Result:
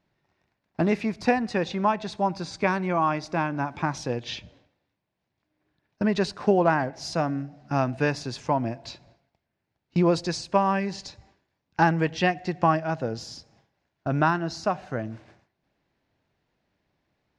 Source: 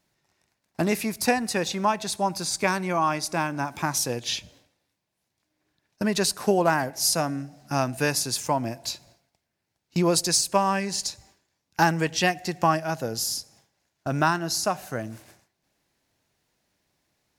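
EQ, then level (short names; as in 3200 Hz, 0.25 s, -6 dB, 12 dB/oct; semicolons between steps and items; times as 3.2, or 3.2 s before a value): tape spacing loss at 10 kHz 43 dB; high shelf 2600 Hz +11.5 dB; +2.5 dB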